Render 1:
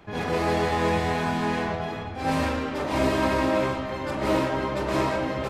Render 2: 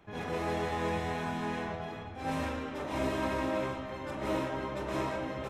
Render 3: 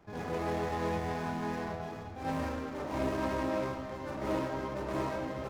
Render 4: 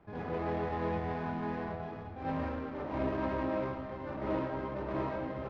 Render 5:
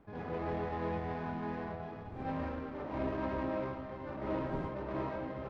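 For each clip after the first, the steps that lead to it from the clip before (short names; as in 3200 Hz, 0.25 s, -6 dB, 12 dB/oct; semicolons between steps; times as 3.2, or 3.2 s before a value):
notch 4600 Hz, Q 7; gain -9 dB
median filter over 15 samples
air absorption 290 m
wind noise 310 Hz -49 dBFS; gain -2.5 dB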